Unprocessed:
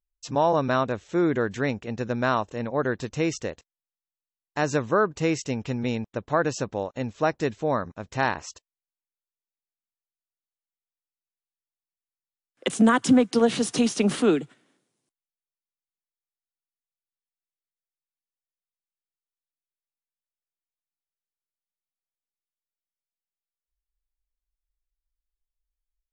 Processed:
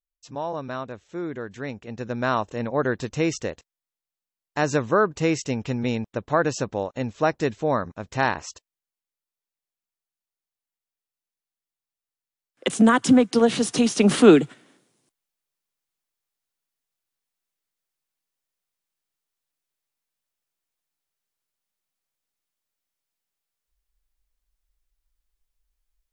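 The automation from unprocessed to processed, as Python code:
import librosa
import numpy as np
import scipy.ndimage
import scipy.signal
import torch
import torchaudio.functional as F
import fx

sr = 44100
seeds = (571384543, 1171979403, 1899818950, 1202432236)

y = fx.gain(x, sr, db=fx.line((1.47, -8.5), (2.48, 2.0), (13.86, 2.0), (14.38, 9.5)))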